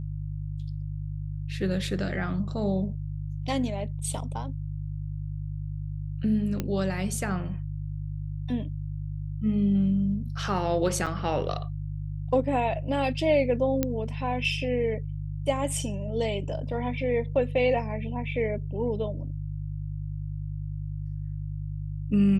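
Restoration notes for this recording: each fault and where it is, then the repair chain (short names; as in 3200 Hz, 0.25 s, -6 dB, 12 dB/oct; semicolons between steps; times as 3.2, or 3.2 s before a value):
hum 50 Hz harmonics 3 -33 dBFS
6.6 pop -15 dBFS
11.06–11.07 gap 6.6 ms
13.83 pop -11 dBFS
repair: de-click; de-hum 50 Hz, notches 3; interpolate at 11.06, 6.6 ms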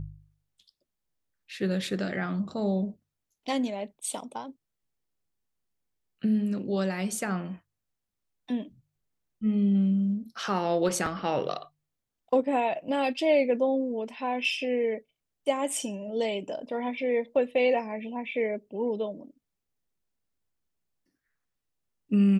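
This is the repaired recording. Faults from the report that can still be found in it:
none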